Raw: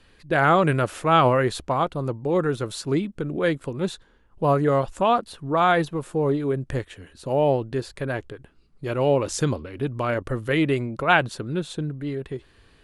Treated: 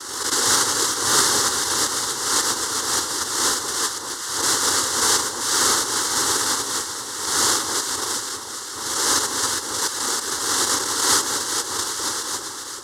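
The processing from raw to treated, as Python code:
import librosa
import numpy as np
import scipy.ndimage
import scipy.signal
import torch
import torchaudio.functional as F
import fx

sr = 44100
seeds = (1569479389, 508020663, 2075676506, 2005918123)

p1 = fx.reverse_delay(x, sr, ms=234, wet_db=-9)
p2 = scipy.signal.sosfilt(scipy.signal.butter(2, 210.0, 'highpass', fs=sr, output='sos'), p1)
p3 = (np.mod(10.0 ** (19.5 / 20.0) * p2 + 1.0, 2.0) - 1.0) / 10.0 ** (19.5 / 20.0)
p4 = p2 + (p3 * 10.0 ** (-8.5 / 20.0))
p5 = fx.noise_vocoder(p4, sr, seeds[0], bands=1)
p6 = fx.fixed_phaser(p5, sr, hz=660.0, stages=6)
p7 = p6 + fx.echo_alternate(p6, sr, ms=197, hz=1100.0, feedback_pct=87, wet_db=-9.5, dry=0)
p8 = fx.pre_swell(p7, sr, db_per_s=49.0)
y = p8 * 10.0 ** (2.5 / 20.0)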